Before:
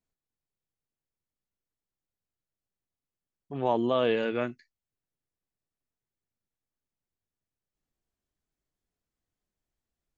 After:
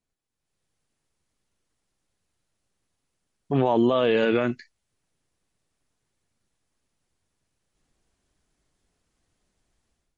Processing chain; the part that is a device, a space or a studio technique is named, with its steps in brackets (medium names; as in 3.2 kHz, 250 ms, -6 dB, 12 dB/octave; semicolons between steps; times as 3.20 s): low-bitrate web radio (level rider gain up to 11.5 dB; peak limiter -15 dBFS, peak gain reduction 11.5 dB; trim +3.5 dB; MP3 48 kbps 48 kHz)